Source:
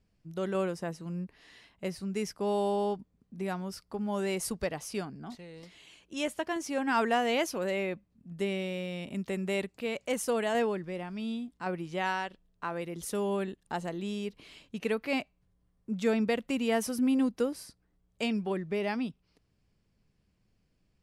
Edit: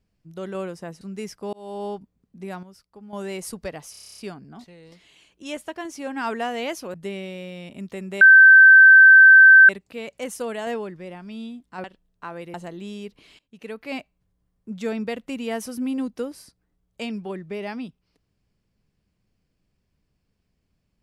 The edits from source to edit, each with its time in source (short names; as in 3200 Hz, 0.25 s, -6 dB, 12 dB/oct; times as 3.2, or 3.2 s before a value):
1.01–1.99 cut
2.51–2.84 fade in
3.61–4.11 gain -9.5 dB
4.89 stutter 0.03 s, 10 plays
7.65–8.3 cut
9.57 add tone 1550 Hz -6 dBFS 1.48 s
11.72–12.24 cut
12.94–13.75 cut
14.6–15.19 fade in linear, from -22 dB